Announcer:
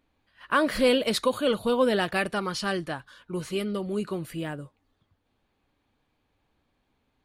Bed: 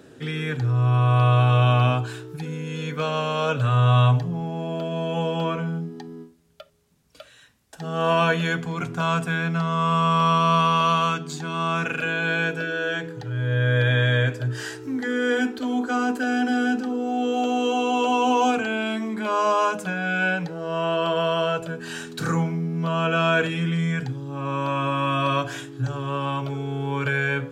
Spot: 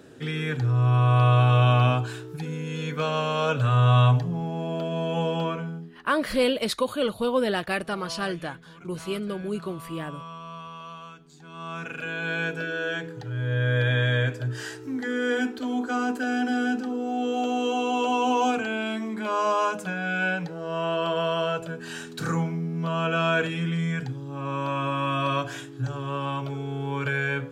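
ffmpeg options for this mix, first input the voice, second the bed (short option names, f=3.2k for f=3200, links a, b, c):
-filter_complex "[0:a]adelay=5550,volume=-1dB[a];[1:a]volume=17dB,afade=t=out:st=5.33:d=0.73:silence=0.1,afade=t=in:st=11.32:d=1.31:silence=0.125893[b];[a][b]amix=inputs=2:normalize=0"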